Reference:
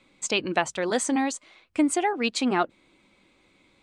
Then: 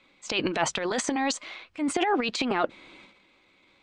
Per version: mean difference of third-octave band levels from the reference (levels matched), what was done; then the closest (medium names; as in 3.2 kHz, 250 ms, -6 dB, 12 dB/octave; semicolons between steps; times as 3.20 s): 5.5 dB: bass shelf 430 Hz -9 dB; transient shaper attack -9 dB, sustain +12 dB; low-pass 4.9 kHz 12 dB/octave; trim +2 dB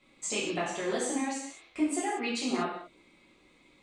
8.5 dB: band-stop 1.5 kHz, Q 13; compression 2.5:1, threshold -30 dBFS, peak gain reduction 8.5 dB; gated-style reverb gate 260 ms falling, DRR -8 dB; trim -8.5 dB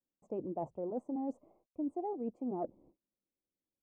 11.5 dB: gate -55 dBFS, range -33 dB; inverse Chebyshev low-pass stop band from 1.5 kHz, stop band 40 dB; reverse; compression 5:1, threshold -36 dBFS, peak gain reduction 16.5 dB; reverse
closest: first